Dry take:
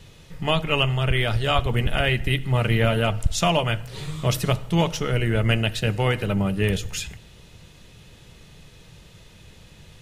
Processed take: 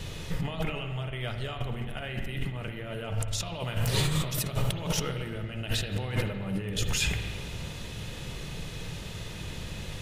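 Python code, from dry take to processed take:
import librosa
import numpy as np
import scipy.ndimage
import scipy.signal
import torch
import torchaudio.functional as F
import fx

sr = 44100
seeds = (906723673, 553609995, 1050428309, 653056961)

y = fx.high_shelf(x, sr, hz=8300.0, db=8.0, at=(3.6, 5.42))
y = fx.over_compress(y, sr, threshold_db=-33.0, ratio=-1.0)
y = fx.rev_spring(y, sr, rt60_s=1.7, pass_ms=(47, 56), chirp_ms=30, drr_db=6.0)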